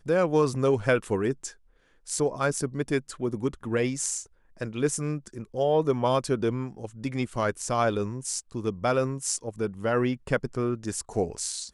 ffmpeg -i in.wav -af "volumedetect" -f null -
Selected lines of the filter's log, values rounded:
mean_volume: -27.8 dB
max_volume: -9.6 dB